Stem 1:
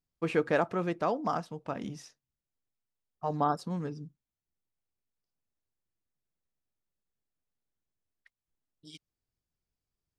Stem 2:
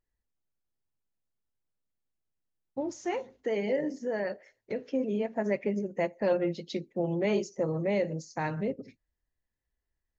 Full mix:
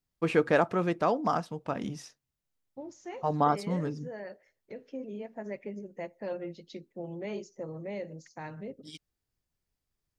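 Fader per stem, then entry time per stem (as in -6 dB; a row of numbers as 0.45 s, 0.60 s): +3.0 dB, -9.5 dB; 0.00 s, 0.00 s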